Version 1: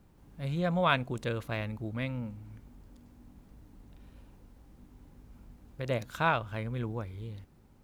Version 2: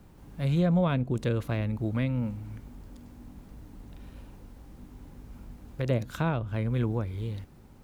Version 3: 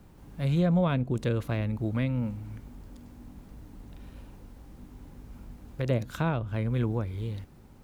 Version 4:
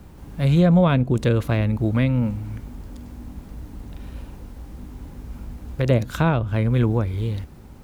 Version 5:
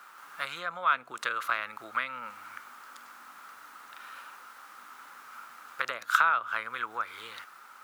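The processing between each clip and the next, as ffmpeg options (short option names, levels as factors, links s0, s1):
-filter_complex "[0:a]acrossover=split=450[s0][s1];[s1]acompressor=threshold=0.00501:ratio=3[s2];[s0][s2]amix=inputs=2:normalize=0,volume=2.37"
-af anull
-af "equalizer=f=65:w=5.3:g=10,volume=2.66"
-af "acompressor=threshold=0.1:ratio=10,highpass=f=1300:t=q:w=6.2"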